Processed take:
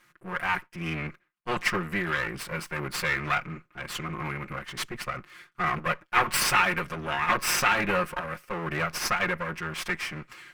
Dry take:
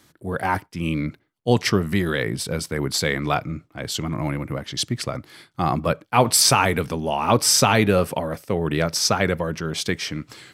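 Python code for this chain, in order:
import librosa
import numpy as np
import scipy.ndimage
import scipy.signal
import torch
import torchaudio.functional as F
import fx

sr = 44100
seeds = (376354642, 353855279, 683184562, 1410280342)

y = fx.lower_of_two(x, sr, delay_ms=5.6)
y = fx.band_shelf(y, sr, hz=1700.0, db=11.0, octaves=1.7)
y = y * librosa.db_to_amplitude(-9.0)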